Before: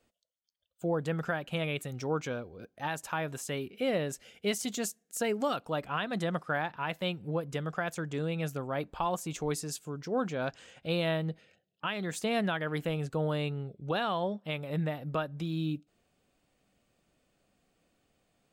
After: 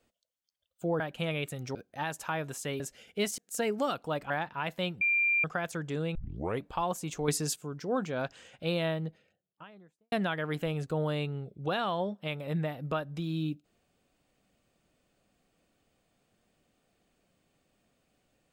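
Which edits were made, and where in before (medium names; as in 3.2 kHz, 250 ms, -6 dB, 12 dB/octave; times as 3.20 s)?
1.00–1.33 s: delete
2.08–2.59 s: delete
3.64–4.07 s: delete
4.65–5.00 s: delete
5.92–6.53 s: delete
7.24–7.67 s: bleep 2.38 kHz -23.5 dBFS
8.38 s: tape start 0.48 s
9.51–9.79 s: gain +5.5 dB
10.87–12.35 s: studio fade out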